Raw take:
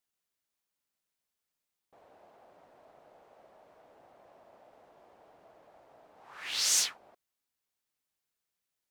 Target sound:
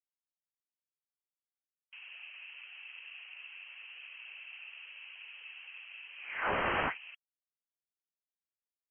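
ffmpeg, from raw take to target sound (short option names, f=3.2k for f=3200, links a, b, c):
-af "lowpass=f=2.8k:t=q:w=0.5098,lowpass=f=2.8k:t=q:w=0.6013,lowpass=f=2.8k:t=q:w=0.9,lowpass=f=2.8k:t=q:w=2.563,afreqshift=-3300,afftfilt=real='re*gte(hypot(re,im),0.000251)':imag='im*gte(hypot(re,im),0.000251)':win_size=1024:overlap=0.75,volume=10dB"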